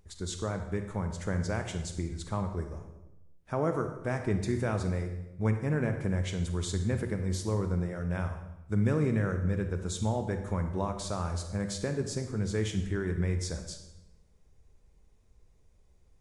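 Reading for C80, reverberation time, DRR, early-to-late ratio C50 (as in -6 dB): 10.0 dB, 0.95 s, 6.5 dB, 8.0 dB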